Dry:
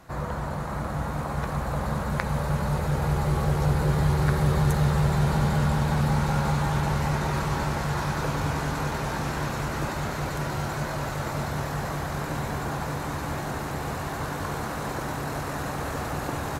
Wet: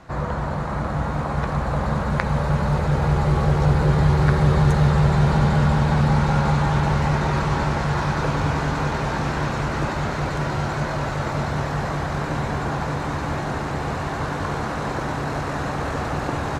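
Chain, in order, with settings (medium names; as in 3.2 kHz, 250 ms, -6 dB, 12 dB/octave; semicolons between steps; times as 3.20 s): distance through air 77 m; trim +5.5 dB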